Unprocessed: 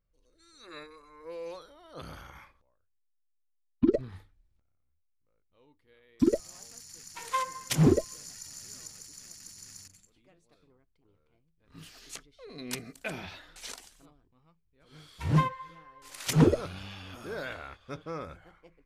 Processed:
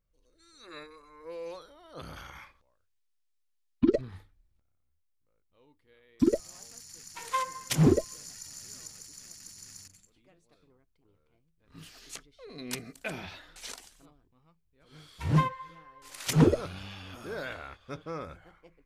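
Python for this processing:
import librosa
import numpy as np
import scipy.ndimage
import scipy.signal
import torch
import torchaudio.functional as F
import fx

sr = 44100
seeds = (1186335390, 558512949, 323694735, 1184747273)

y = fx.peak_eq(x, sr, hz=3900.0, db=6.0, octaves=2.9, at=(2.16, 4.01))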